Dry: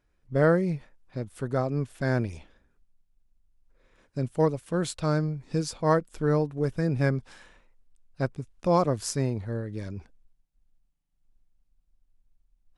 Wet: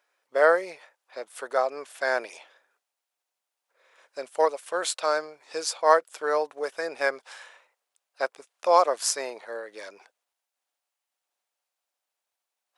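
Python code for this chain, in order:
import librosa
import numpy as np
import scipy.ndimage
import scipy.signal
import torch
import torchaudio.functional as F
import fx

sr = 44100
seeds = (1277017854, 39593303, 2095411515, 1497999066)

y = scipy.signal.sosfilt(scipy.signal.butter(4, 560.0, 'highpass', fs=sr, output='sos'), x)
y = F.gain(torch.from_numpy(y), 7.0).numpy()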